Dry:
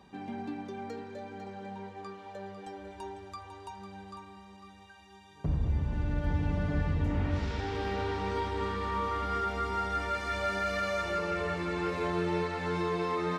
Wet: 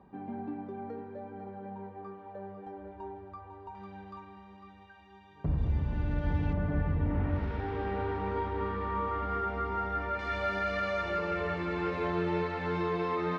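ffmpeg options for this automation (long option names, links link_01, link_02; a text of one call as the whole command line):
ffmpeg -i in.wav -af "asetnsamples=nb_out_samples=441:pad=0,asendcmd='3.75 lowpass f 2500;5.58 lowpass f 4000;6.53 lowpass f 1800;10.19 lowpass f 3400',lowpass=1200" out.wav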